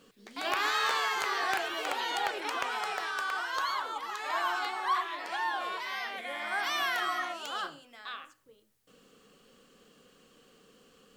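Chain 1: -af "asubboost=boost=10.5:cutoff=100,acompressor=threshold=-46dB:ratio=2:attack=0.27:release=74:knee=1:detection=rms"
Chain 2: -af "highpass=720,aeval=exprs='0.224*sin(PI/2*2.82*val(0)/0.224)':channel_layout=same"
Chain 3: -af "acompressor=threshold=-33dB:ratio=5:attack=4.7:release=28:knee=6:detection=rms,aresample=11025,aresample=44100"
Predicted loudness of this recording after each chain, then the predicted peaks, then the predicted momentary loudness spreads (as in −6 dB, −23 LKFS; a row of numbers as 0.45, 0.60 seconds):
−43.0, −20.5, −36.0 LKFS; −29.5, −13.0, −24.0 dBFS; 19, 8, 6 LU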